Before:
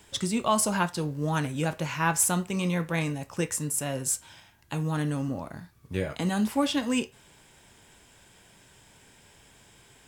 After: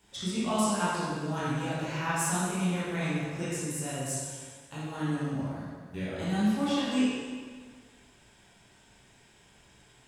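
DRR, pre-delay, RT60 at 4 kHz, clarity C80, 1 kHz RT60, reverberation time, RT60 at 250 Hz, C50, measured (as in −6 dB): −10.0 dB, 15 ms, 1.4 s, −0.5 dB, 1.6 s, 1.6 s, 1.7 s, −3.5 dB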